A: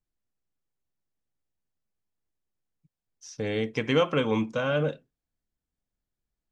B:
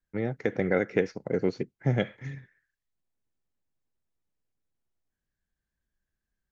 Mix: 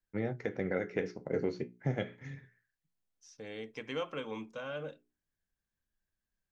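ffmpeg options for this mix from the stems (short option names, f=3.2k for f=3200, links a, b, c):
-filter_complex "[0:a]highpass=f=260:p=1,volume=-12.5dB[a];[1:a]flanger=delay=9.5:depth=3.9:regen=-62:speed=0.33:shape=triangular,volume=0.5dB[b];[a][b]amix=inputs=2:normalize=0,bandreject=f=60:t=h:w=6,bandreject=f=120:t=h:w=6,bandreject=f=180:t=h:w=6,bandreject=f=240:t=h:w=6,bandreject=f=300:t=h:w=6,bandreject=f=360:t=h:w=6,bandreject=f=420:t=h:w=6,alimiter=limit=-20.5dB:level=0:latency=1:release=399"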